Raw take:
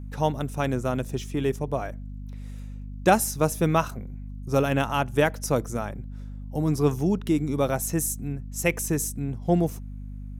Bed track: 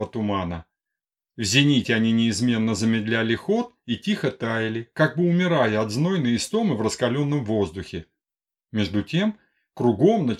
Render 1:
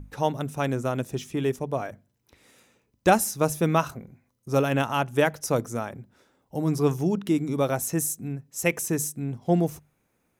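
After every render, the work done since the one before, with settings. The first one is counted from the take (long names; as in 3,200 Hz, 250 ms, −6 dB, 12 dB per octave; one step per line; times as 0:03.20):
mains-hum notches 50/100/150/200/250 Hz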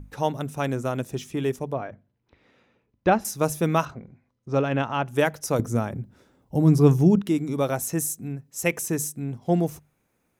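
0:01.73–0:03.25: high-frequency loss of the air 270 metres
0:03.85–0:05.07: high-frequency loss of the air 160 metres
0:05.59–0:07.22: low-shelf EQ 320 Hz +11.5 dB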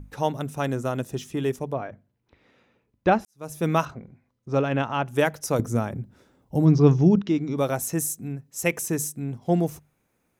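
0:00.58–0:01.47: notch filter 2,300 Hz
0:03.25–0:03.68: fade in quadratic
0:06.65–0:07.57: Butterworth low-pass 6,200 Hz 48 dB per octave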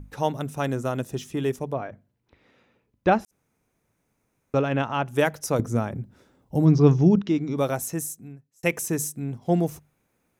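0:03.31–0:04.54: fill with room tone
0:05.50–0:05.95: high-shelf EQ 8,600 Hz −7.5 dB
0:07.67–0:08.63: fade out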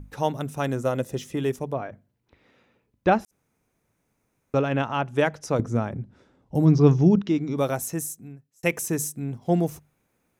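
0:00.83–0:01.35: hollow resonant body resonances 530/2,000 Hz, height 8 dB → 12 dB
0:05.01–0:06.55: high-frequency loss of the air 73 metres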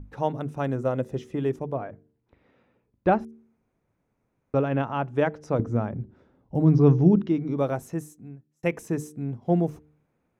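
low-pass filter 1,200 Hz 6 dB per octave
hum removal 75.39 Hz, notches 6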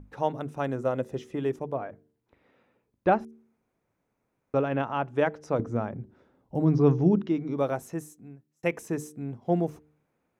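low-shelf EQ 210 Hz −8 dB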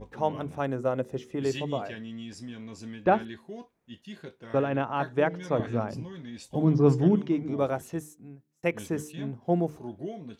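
mix in bed track −19.5 dB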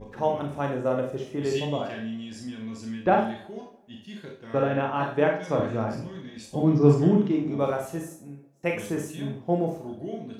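tape delay 165 ms, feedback 53%, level −21 dB, low-pass 1,600 Hz
four-comb reverb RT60 0.39 s, combs from 28 ms, DRR 1 dB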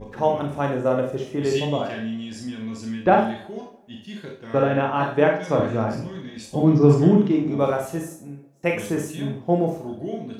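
level +4.5 dB
brickwall limiter −3 dBFS, peak gain reduction 3 dB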